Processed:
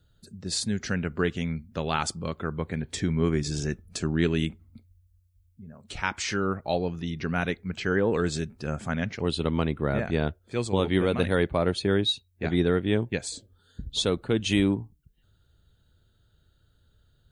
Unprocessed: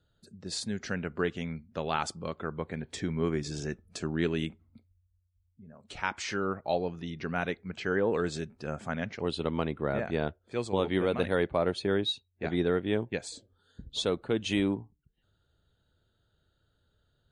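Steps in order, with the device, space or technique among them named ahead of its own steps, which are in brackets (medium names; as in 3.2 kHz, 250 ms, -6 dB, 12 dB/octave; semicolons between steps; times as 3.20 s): smiley-face EQ (bass shelf 120 Hz +7.5 dB; peaking EQ 680 Hz -3.5 dB 1.7 oct; treble shelf 8.6 kHz +7.5 dB); trim +4.5 dB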